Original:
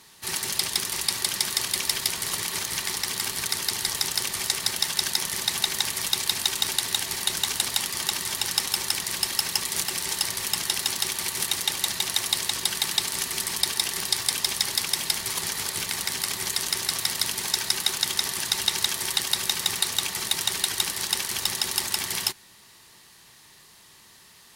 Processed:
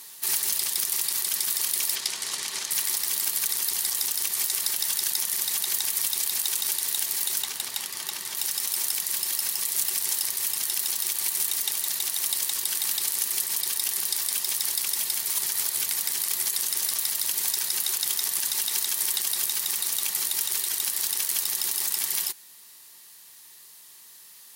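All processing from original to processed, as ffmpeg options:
ffmpeg -i in.wav -filter_complex "[0:a]asettb=1/sr,asplit=3[link_01][link_02][link_03];[link_01]atrim=end=1.954[link_04];[link_02]atrim=start=1.95:end=2.71,asetpts=PTS-STARTPTS,afade=type=in:duration=0.004:curve=qsin,afade=type=out:start_time=0.756:duration=0.004:curve=qsin,asoftclip=type=hard:threshold=-9.5dB,highpass=130,lowpass=6700[link_05];[link_03]atrim=start=2.706[link_06];[link_04][link_05]acrossfade=duration=0.004:curve1=hsin:curve2=qsin[link_07];[link_07][link_06]acrossfade=duration=0.004:curve1=qsin:curve2=hsin,asettb=1/sr,asplit=3[link_08][link_09][link_10];[link_08]atrim=end=7.424[link_11];[link_09]atrim=start=7.42:end=8.37,asetpts=PTS-STARTPTS,afade=type=in:duration=0.004:curve=qsin,afade=type=out:start_time=0.946:duration=0.004:curve=qsin,lowpass=frequency=3600:poles=1,volume=16.5dB,asoftclip=hard,volume=-16.5dB[link_12];[link_10]atrim=start=8.366[link_13];[link_11][link_12]acrossfade=duration=0.004:curve1=hsin:curve2=qsin[link_14];[link_14][link_13]acrossfade=duration=0.004:curve1=qsin:curve2=hsin,aemphasis=mode=production:type=bsi,dynaudnorm=framelen=460:gausssize=17:maxgain=11.5dB,alimiter=limit=-11.5dB:level=0:latency=1:release=38" out.wav

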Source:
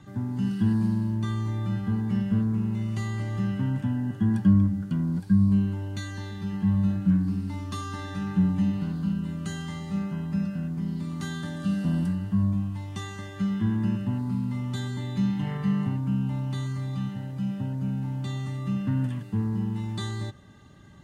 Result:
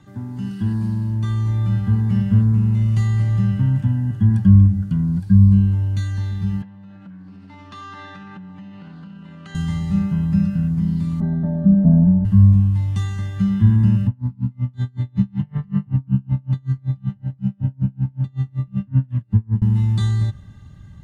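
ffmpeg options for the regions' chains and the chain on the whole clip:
ffmpeg -i in.wav -filter_complex "[0:a]asettb=1/sr,asplit=3[link_01][link_02][link_03];[link_01]atrim=end=6.624[link_04];[link_02]atrim=start=6.62:end=9.55,asetpts=PTS-STARTPTS,afade=type=in:duration=0.004:curve=qsin,afade=type=out:start_time=2.926:duration=0.004:curve=qsin,acompressor=threshold=-30dB:ratio=8:attack=3.2:release=140:knee=1:detection=peak,highpass=430,lowpass=3300,bandreject=frequency=1100:width=26[link_05];[link_03]atrim=start=9.546[link_06];[link_04][link_05]acrossfade=duration=0.004:curve1=hsin:curve2=qsin[link_07];[link_07][link_06]acrossfade=duration=0.004:curve1=qsin:curve2=hsin,asettb=1/sr,asplit=3[link_08][link_09][link_10];[link_08]atrim=end=11.204[link_11];[link_09]atrim=start=11.2:end=12.25,asetpts=PTS-STARTPTS,afade=type=in:duration=0.004:curve=qsin,afade=type=out:start_time=1.046:duration=0.004:curve=qsin,lowpass=frequency=640:width_type=q:width=4.2,aecho=1:1:4.6:0.8,atrim=end_sample=46305[link_12];[link_10]atrim=start=12.246[link_13];[link_11][link_12]acrossfade=duration=0.004:curve1=hsin:curve2=qsin[link_14];[link_14][link_13]acrossfade=duration=0.004:curve1=qsin:curve2=hsin,asettb=1/sr,asplit=3[link_15][link_16][link_17];[link_15]atrim=end=14.074[link_18];[link_16]atrim=start=14.07:end=19.62,asetpts=PTS-STARTPTS,afade=type=in:duration=0.004:curve=qsin,afade=type=out:start_time=5.546:duration=0.004:curve=qsin,aemphasis=mode=reproduction:type=75kf,aeval=exprs='val(0)*pow(10,-34*(0.5-0.5*cos(2*PI*5.3*n/s))/20)':channel_layout=same[link_19];[link_17]atrim=start=19.616[link_20];[link_18][link_19]acrossfade=duration=0.004:curve1=hsin:curve2=qsin[link_21];[link_21][link_20]acrossfade=duration=0.004:curve1=qsin:curve2=hsin,asubboost=boost=7.5:cutoff=130,dynaudnorm=framelen=540:gausssize=5:maxgain=4dB" out.wav

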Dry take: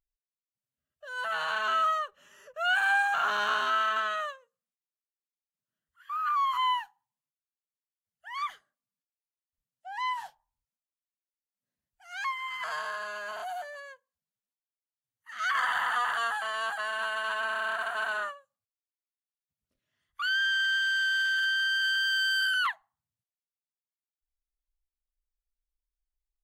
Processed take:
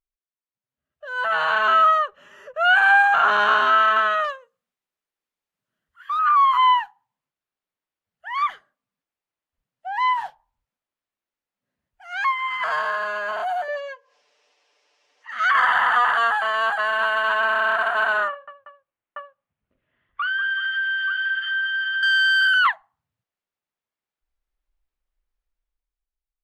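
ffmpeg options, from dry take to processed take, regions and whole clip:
ffmpeg -i in.wav -filter_complex "[0:a]asettb=1/sr,asplit=3[link_01][link_02][link_03];[link_01]atrim=end=4.244[link_04];[link_02]atrim=start=4.24:end=6.19,asetpts=PTS-STARTPTS,afade=type=in:duration=0.004:curve=qsin,afade=type=out:start_time=1.946:duration=0.004:curve=qsin,equalizer=frequency=12000:width_type=o:width=2.5:gain=5,volume=32dB,asoftclip=hard,volume=-32dB[link_05];[link_03]atrim=start=6.186[link_06];[link_04][link_05]acrossfade=duration=0.004:curve1=hsin:curve2=qsin[link_07];[link_07][link_06]acrossfade=duration=0.004:curve1=qsin:curve2=hsin,asettb=1/sr,asplit=3[link_08][link_09][link_10];[link_08]atrim=end=13.684[link_11];[link_09]atrim=start=13.68:end=15.31,asetpts=PTS-STARTPTS,afade=type=in:duration=0.004:curve=qsin,afade=type=out:start_time=1.626:duration=0.004:curve=qsin,aecho=1:1:6.8:0.71,atrim=end_sample=71883,acompressor=mode=upward:threshold=-48dB:ratio=2.5:attack=3.2:release=140:knee=2.83:detection=peak,highpass=frequency=400:width=0.5412,highpass=frequency=400:width=1.3066,equalizer=frequency=500:width_type=q:width=4:gain=5,equalizer=frequency=1400:width_type=q:width=4:gain=-6,equalizer=frequency=2700:width_type=q:width=4:gain=5,equalizer=frequency=5400:width_type=q:width=4:gain=9,lowpass=frequency=7100:width=0.5412,lowpass=frequency=7100:width=1.3066[link_12];[link_10]atrim=start=15.306[link_13];[link_11][link_12]acrossfade=duration=0.004:curve1=hsin:curve2=qsin[link_14];[link_14][link_13]acrossfade=duration=0.004:curve1=qsin:curve2=hsin,asettb=1/sr,asplit=3[link_15][link_16][link_17];[link_15]atrim=end=18.284[link_18];[link_16]atrim=start=18.28:end=22.03,asetpts=PTS-STARTPTS,afade=type=in:duration=0.004:curve=qsin,afade=type=out:start_time=3.746:duration=0.004:curve=qsin,lowpass=frequency=3100:width=0.5412,lowpass=frequency=3100:width=1.3066,aecho=1:1:47|194|380|881:0.282|0.299|0.2|0.596,atrim=end_sample=165375,acompressor=threshold=-32dB:ratio=5:attack=3.2:release=140:knee=1:detection=peak[link_19];[link_17]atrim=start=22.026[link_20];[link_18][link_19]acrossfade=duration=0.004:curve1=hsin:curve2=qsin[link_21];[link_21][link_20]acrossfade=duration=0.004:curve1=qsin:curve2=hsin,bass=frequency=250:gain=-3,treble=frequency=4000:gain=-6,dynaudnorm=framelen=110:gausssize=17:maxgain=12dB,highshelf=frequency=4000:gain=-11" out.wav

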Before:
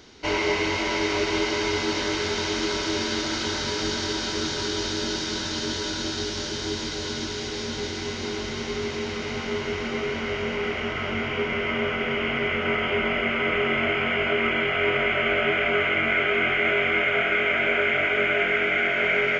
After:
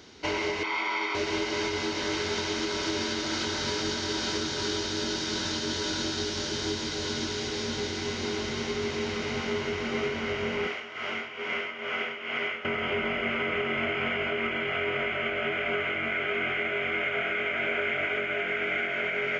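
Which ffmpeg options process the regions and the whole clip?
ffmpeg -i in.wav -filter_complex "[0:a]asettb=1/sr,asplit=3[link_01][link_02][link_03];[link_01]atrim=end=0.634[link_04];[link_02]atrim=start=0.63:end=1.15,asetpts=PTS-STARTPTS,afade=type=in:duration=0.004:curve=qsin,afade=type=out:start_time=0.516:duration=0.004:curve=qsin,highpass=520,lowpass=3100,aecho=1:1:0.9:0.62,atrim=end_sample=22932[link_05];[link_03]atrim=start=1.146[link_06];[link_04][link_05]acrossfade=duration=0.004:curve1=hsin:curve2=qsin[link_07];[link_07][link_06]acrossfade=duration=0.004:curve1=qsin:curve2=hsin,asettb=1/sr,asplit=3[link_08][link_09][link_10];[link_08]atrim=end=10.674[link_11];[link_09]atrim=start=10.67:end=12.65,asetpts=PTS-STARTPTS,afade=type=in:duration=0.004:curve=qsin,afade=type=out:start_time=1.976:duration=0.004:curve=qsin,highpass=frequency=710:poles=1,tremolo=f=2.3:d=0.69[link_12];[link_10]atrim=start=12.646[link_13];[link_11][link_12]acrossfade=duration=0.004:curve1=hsin:curve2=qsin[link_14];[link_14][link_13]acrossfade=duration=0.004:curve1=qsin:curve2=hsin,highpass=59,alimiter=limit=-18.5dB:level=0:latency=1:release=361,volume=-1dB" out.wav

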